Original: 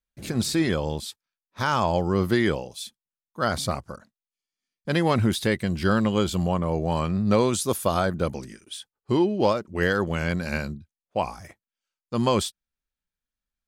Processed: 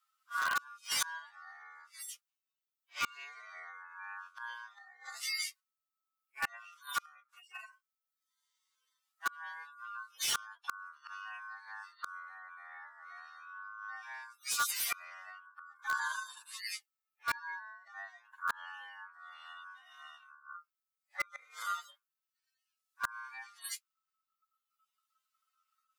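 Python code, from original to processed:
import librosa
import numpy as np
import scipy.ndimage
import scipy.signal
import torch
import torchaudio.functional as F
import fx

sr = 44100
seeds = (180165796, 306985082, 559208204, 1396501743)

p1 = fx.hpss_only(x, sr, part='harmonic')
p2 = fx.dereverb_blind(p1, sr, rt60_s=0.69)
p3 = fx.stretch_vocoder(p2, sr, factor=1.9)
p4 = p3 * np.sin(2.0 * np.pi * 1300.0 * np.arange(len(p3)) / sr)
p5 = fx.gate_flip(p4, sr, shuts_db=-31.0, range_db=-33)
p6 = scipy.signal.sosfilt(scipy.signal.bessel(4, 1200.0, 'highpass', norm='mag', fs=sr, output='sos'), p5)
p7 = (np.mod(10.0 ** (40.0 / 20.0) * p6 + 1.0, 2.0) - 1.0) / 10.0 ** (40.0 / 20.0)
p8 = p6 + (p7 * 10.0 ** (-6.5 / 20.0))
y = p8 * 10.0 ** (13.0 / 20.0)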